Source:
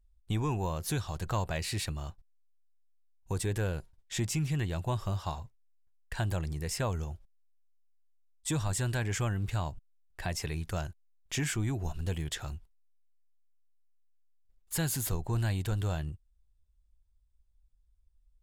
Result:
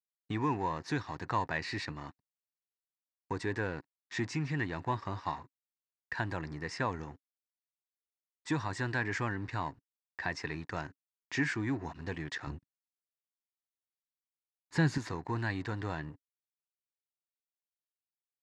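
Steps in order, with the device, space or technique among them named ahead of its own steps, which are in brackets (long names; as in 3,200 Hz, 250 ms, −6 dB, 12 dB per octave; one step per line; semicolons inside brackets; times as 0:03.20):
blown loudspeaker (dead-zone distortion −49.5 dBFS; loudspeaker in its box 150–5,200 Hz, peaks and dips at 190 Hz −4 dB, 280 Hz +7 dB, 600 Hz −5 dB, 970 Hz +7 dB, 1,800 Hz +10 dB, 3,200 Hz −9 dB)
0:12.47–0:14.98: low-shelf EQ 370 Hz +10 dB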